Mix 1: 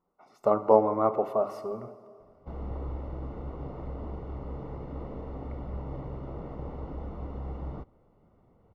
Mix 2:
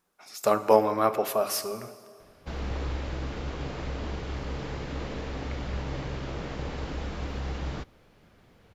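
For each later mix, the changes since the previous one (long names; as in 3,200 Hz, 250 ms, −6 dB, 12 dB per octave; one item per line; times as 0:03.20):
background +3.5 dB
master: remove Savitzky-Golay smoothing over 65 samples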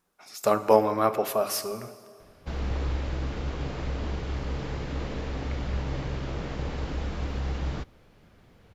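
master: add low-shelf EQ 170 Hz +4 dB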